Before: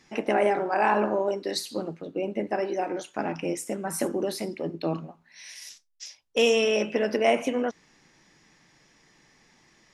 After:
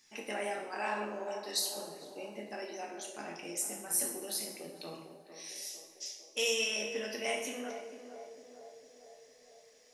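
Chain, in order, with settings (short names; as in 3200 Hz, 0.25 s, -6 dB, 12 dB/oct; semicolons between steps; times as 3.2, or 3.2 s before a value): pre-emphasis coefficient 0.9; narrowing echo 0.452 s, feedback 66%, band-pass 540 Hz, level -8.5 dB; two-slope reverb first 0.67 s, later 2.2 s, from -18 dB, DRR 0.5 dB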